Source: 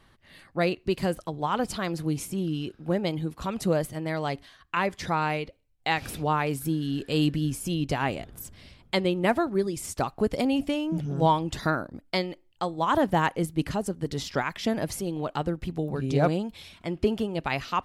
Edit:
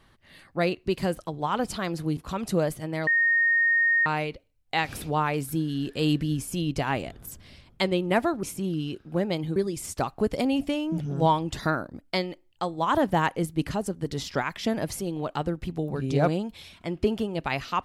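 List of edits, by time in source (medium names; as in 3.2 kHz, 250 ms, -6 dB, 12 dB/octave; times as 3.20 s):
2.17–3.30 s: move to 9.56 s
4.20–5.19 s: bleep 1.85 kHz -18.5 dBFS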